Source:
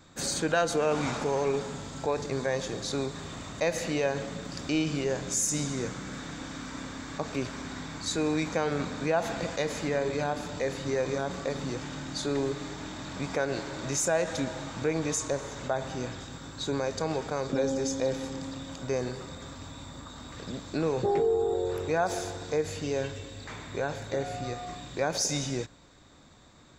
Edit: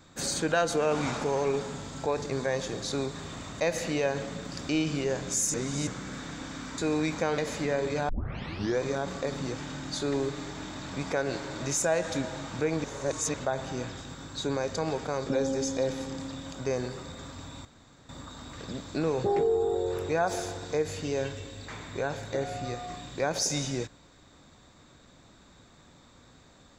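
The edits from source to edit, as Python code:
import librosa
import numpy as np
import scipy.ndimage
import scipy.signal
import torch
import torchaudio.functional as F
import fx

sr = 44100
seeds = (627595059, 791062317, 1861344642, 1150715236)

y = fx.edit(x, sr, fx.reverse_span(start_s=5.54, length_s=0.33),
    fx.cut(start_s=6.78, length_s=1.34),
    fx.cut(start_s=8.72, length_s=0.89),
    fx.tape_start(start_s=10.32, length_s=0.71),
    fx.reverse_span(start_s=15.07, length_s=0.5),
    fx.insert_room_tone(at_s=19.88, length_s=0.44), tone=tone)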